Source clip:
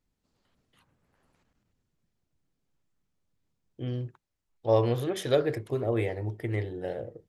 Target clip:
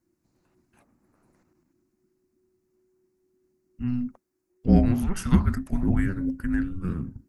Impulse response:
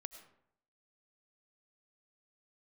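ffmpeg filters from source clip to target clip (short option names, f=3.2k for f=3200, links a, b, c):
-af "equalizer=f=3.7k:t=o:w=0.61:g=-15,afreqshift=-370,volume=5.5dB"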